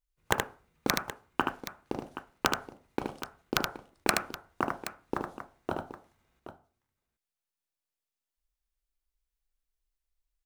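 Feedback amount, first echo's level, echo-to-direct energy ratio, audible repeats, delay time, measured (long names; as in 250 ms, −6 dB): repeats not evenly spaced, −4.5 dB, −4.0 dB, 2, 75 ms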